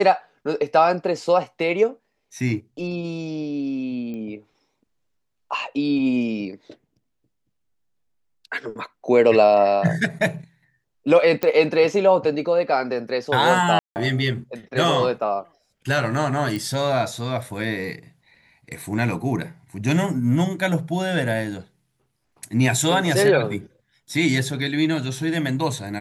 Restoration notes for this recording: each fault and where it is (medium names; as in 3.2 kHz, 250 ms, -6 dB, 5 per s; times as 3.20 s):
4.14 s: pop -24 dBFS
11.43 s: pop -9 dBFS
13.79–13.96 s: dropout 169 ms
16.56 s: pop